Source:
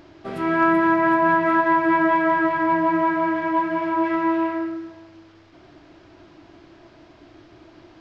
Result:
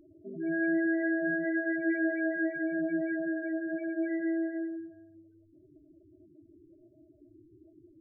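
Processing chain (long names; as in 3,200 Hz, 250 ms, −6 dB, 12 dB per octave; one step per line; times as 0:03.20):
linear-phase brick-wall band-stop 660–1,400 Hz
spectral peaks only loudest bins 8
level −8 dB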